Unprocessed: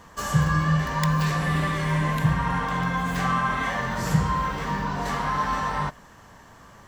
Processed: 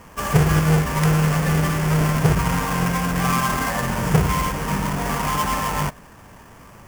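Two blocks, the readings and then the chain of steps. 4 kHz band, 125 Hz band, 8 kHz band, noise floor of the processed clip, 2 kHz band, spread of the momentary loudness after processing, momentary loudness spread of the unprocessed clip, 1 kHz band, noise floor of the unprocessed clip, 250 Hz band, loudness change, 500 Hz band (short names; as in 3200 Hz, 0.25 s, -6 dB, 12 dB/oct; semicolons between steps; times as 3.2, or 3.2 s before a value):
+5.0 dB, +5.0 dB, +9.5 dB, -45 dBFS, +2.0 dB, 6 LU, 5 LU, +2.0 dB, -50 dBFS, +5.0 dB, +4.5 dB, +7.5 dB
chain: half-waves squared off; bell 3900 Hz -11.5 dB 0.41 oct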